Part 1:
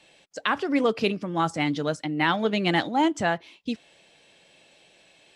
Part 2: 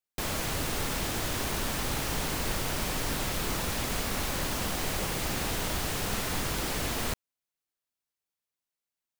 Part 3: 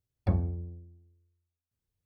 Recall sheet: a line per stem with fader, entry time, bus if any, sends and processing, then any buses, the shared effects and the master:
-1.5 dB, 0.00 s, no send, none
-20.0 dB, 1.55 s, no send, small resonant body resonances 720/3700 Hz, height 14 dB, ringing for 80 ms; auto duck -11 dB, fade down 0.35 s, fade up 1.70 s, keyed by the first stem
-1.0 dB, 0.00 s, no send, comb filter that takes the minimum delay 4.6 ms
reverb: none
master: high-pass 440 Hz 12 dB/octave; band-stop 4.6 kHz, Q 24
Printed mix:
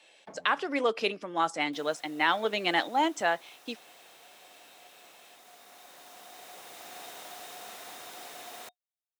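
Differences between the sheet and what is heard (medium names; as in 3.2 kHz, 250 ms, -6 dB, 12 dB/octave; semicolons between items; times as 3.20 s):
stem 2 -20.0 dB -> -12.5 dB; stem 3 -1.0 dB -> -9.0 dB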